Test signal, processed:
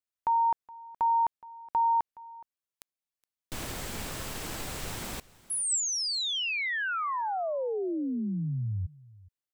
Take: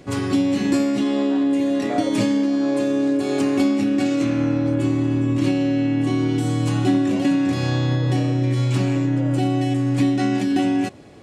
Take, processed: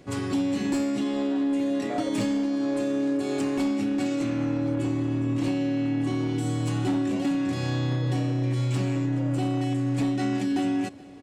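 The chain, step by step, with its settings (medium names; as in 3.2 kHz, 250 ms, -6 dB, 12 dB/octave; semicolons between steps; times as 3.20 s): dynamic bell 7.8 kHz, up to +5 dB, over -55 dBFS, Q 7.6; hard clipper -14.5 dBFS; delay 419 ms -21.5 dB; trim -6 dB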